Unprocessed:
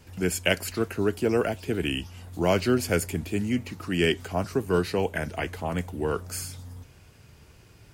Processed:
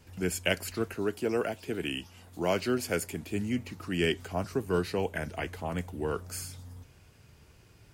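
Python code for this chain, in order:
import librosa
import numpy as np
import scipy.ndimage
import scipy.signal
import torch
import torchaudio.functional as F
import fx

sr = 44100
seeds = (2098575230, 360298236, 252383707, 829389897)

y = fx.highpass(x, sr, hz=190.0, slope=6, at=(0.94, 3.31))
y = y * 10.0 ** (-4.5 / 20.0)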